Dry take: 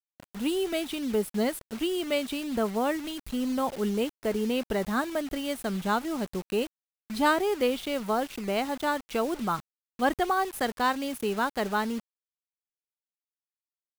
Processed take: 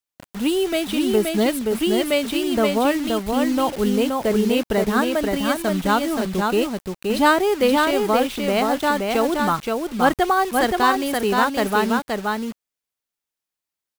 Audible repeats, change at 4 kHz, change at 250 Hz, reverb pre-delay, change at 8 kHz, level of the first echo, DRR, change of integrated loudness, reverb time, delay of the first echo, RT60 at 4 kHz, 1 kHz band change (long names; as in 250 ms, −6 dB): 1, +9.0 dB, +9.0 dB, no reverb audible, +9.0 dB, −3.5 dB, no reverb audible, +9.0 dB, no reverb audible, 524 ms, no reverb audible, +9.0 dB